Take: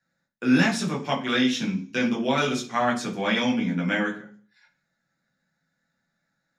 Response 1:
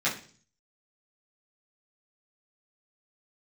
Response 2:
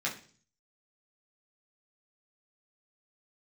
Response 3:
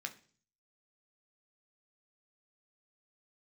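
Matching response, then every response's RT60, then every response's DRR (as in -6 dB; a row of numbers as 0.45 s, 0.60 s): 2; 0.45 s, 0.45 s, 0.45 s; -9.5 dB, -5.0 dB, 4.5 dB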